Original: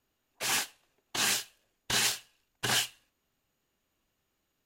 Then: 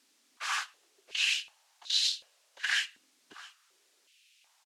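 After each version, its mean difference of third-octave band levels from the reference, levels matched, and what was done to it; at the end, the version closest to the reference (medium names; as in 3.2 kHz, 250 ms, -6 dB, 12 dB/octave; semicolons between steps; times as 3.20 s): 14.0 dB: added noise blue -55 dBFS; low-pass 6.3 kHz 12 dB/octave; on a send: delay 669 ms -18.5 dB; on the sum: step-sequenced high-pass 2.7 Hz 260–3900 Hz; trim -5 dB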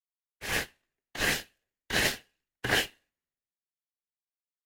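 6.0 dB: peaking EQ 1.9 kHz +10.5 dB 0.54 oct; in parallel at -7.5 dB: sample-and-hold 36×; on the sum: dynamic bell 7.6 kHz, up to -5 dB, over -43 dBFS, Q 1.3; three bands expanded up and down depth 100%; trim -4.5 dB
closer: second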